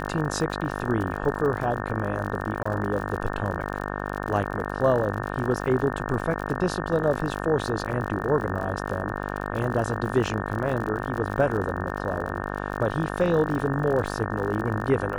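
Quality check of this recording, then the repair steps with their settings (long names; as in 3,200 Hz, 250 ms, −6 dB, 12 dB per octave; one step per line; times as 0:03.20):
mains buzz 50 Hz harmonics 36 −31 dBFS
surface crackle 49 per second −31 dBFS
0:02.63–0:02.65: drop-out 25 ms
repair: click removal
hum removal 50 Hz, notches 36
repair the gap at 0:02.63, 25 ms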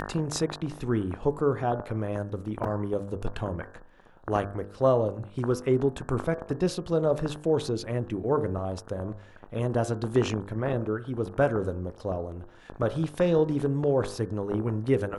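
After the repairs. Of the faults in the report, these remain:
none of them is left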